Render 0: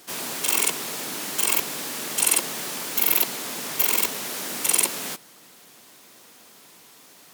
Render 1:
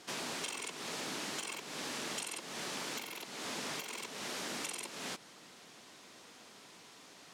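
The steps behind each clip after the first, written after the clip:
downward compressor 5 to 1, threshold −31 dBFS, peak gain reduction 15 dB
low-pass filter 6,500 Hz 12 dB per octave
level −3 dB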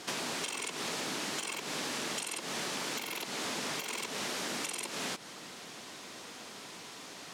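downward compressor 4 to 1, threshold −43 dBFS, peak gain reduction 7 dB
level +9 dB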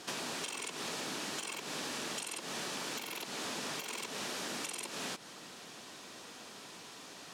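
notch filter 2,100 Hz, Q 18
level −3 dB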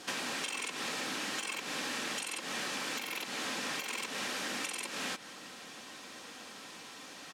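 dynamic equaliser 2,000 Hz, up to +6 dB, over −57 dBFS, Q 1.1
comb filter 3.8 ms, depth 31%

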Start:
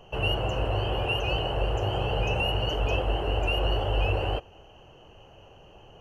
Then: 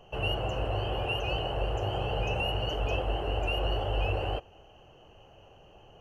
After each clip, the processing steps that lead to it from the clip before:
parametric band 720 Hz +2 dB
notch filter 950 Hz, Q 24
level −4 dB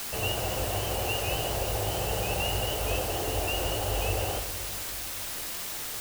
bit-depth reduction 6 bits, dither triangular
on a send at −8.5 dB: convolution reverb RT60 2.2 s, pre-delay 3 ms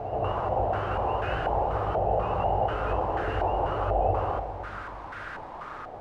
on a send: backwards echo 177 ms −8 dB
on the sum: low-pass on a step sequencer 4.1 Hz 730–1,500 Hz

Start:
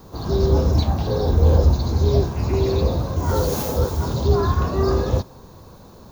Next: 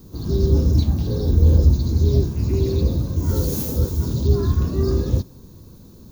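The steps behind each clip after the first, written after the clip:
drawn EQ curve 310 Hz 0 dB, 740 Hz −17 dB, 11,000 Hz +1 dB
level +1.5 dB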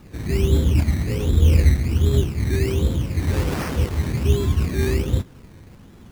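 sample-and-hold swept by an LFO 17×, swing 60% 1.3 Hz
level −1 dB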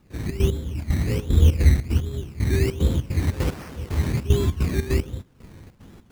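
gate pattern ".xx.x....xxx.xx" 150 BPM −12 dB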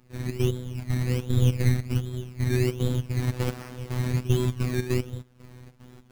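phases set to zero 125 Hz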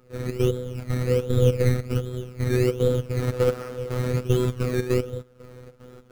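hollow resonant body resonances 490/1,300 Hz, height 16 dB, ringing for 40 ms

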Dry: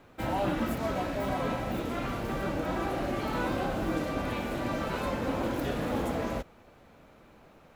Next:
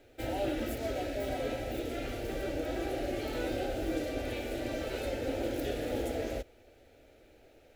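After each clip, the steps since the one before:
phaser with its sweep stopped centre 440 Hz, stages 4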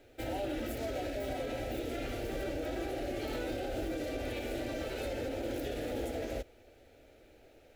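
brickwall limiter −28 dBFS, peak gain reduction 7 dB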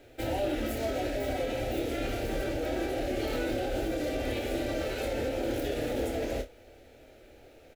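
ambience of single reflections 27 ms −7 dB, 54 ms −16 dB
level +4.5 dB

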